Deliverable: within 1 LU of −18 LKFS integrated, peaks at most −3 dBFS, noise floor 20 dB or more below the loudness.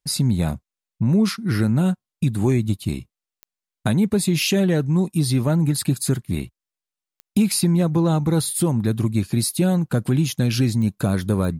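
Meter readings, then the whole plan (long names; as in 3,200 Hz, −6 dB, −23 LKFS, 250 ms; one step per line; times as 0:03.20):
number of clicks 4; integrated loudness −21.0 LKFS; sample peak −8.5 dBFS; target loudness −18.0 LKFS
→ click removal
level +3 dB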